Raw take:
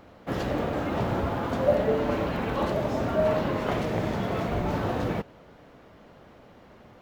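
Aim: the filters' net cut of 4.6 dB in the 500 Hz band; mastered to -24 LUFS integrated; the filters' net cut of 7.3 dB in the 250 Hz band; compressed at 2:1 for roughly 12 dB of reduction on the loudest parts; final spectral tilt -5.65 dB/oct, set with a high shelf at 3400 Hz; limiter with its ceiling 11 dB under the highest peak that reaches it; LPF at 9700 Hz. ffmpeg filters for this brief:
-af "lowpass=9.7k,equalizer=f=250:t=o:g=-9,equalizer=f=500:t=o:g=-3.5,highshelf=f=3.4k:g=-9,acompressor=threshold=-43dB:ratio=2,volume=21dB,alimiter=limit=-15dB:level=0:latency=1"

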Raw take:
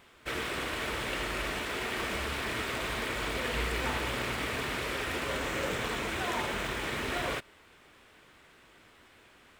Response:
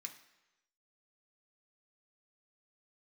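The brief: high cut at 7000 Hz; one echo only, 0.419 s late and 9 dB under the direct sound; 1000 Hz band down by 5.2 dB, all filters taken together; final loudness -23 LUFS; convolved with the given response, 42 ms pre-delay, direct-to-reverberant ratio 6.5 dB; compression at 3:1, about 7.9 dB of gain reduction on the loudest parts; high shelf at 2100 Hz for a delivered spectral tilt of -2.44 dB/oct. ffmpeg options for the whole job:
-filter_complex "[0:a]lowpass=7k,equalizer=f=1k:t=o:g=-9,highshelf=f=2.1k:g=7,acompressor=threshold=-39dB:ratio=3,aecho=1:1:419:0.355,asplit=2[a][b];[1:a]atrim=start_sample=2205,adelay=42[c];[b][c]afir=irnorm=-1:irlink=0,volume=-2dB[d];[a][d]amix=inputs=2:normalize=0,volume=14dB"

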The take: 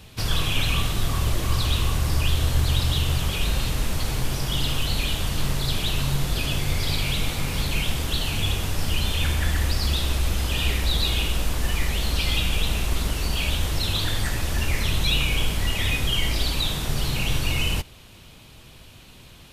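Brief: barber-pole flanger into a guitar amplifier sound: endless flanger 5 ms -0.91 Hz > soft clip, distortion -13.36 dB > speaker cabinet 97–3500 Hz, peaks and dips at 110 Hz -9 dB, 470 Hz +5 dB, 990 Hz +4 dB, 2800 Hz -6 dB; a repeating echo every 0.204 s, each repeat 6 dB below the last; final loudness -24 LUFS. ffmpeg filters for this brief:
-filter_complex "[0:a]aecho=1:1:204|408|612|816|1020|1224:0.501|0.251|0.125|0.0626|0.0313|0.0157,asplit=2[a][b];[b]adelay=5,afreqshift=-0.91[c];[a][c]amix=inputs=2:normalize=1,asoftclip=threshold=-21.5dB,highpass=97,equalizer=f=110:t=q:w=4:g=-9,equalizer=f=470:t=q:w=4:g=5,equalizer=f=990:t=q:w=4:g=4,equalizer=f=2.8k:t=q:w=4:g=-6,lowpass=f=3.5k:w=0.5412,lowpass=f=3.5k:w=1.3066,volume=10dB"

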